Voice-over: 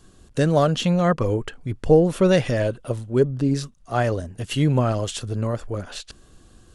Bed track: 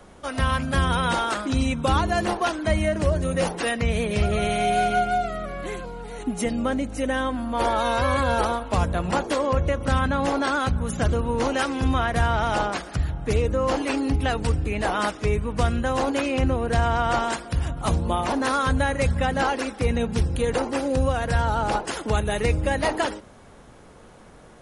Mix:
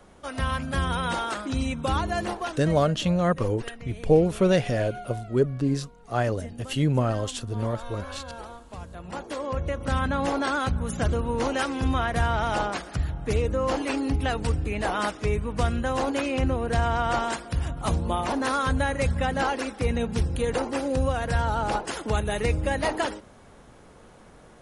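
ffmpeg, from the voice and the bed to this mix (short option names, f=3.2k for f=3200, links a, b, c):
-filter_complex "[0:a]adelay=2200,volume=-3.5dB[a];[1:a]volume=10.5dB,afade=t=out:st=2.2:d=0.65:silence=0.223872,afade=t=in:st=8.9:d=1.25:silence=0.177828[b];[a][b]amix=inputs=2:normalize=0"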